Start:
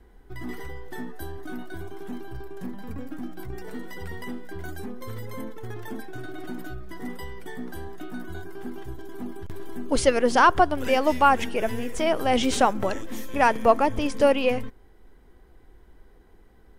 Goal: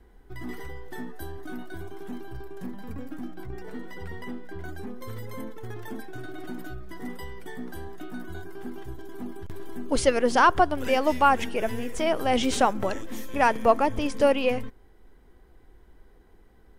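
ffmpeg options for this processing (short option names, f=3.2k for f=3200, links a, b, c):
-filter_complex "[0:a]asettb=1/sr,asplit=3[a][b][c];[a]atrim=end=3.314[d];[b]atrim=start=3.31:end=4.87,asetpts=PTS-STARTPTS,afade=t=in:d=0.004:c=qsin,afade=t=out:st=1.556:d=0.004:c=qsin,highshelf=f=5.2k:g=-8.5[e];[c]atrim=start=4.866[f];[d][e]acrossfade=d=0.004:c1=hsin:c2=qsin[g];[g][f]acrossfade=d=0.004:c1=qsin:c2=hsin,volume=-1.5dB"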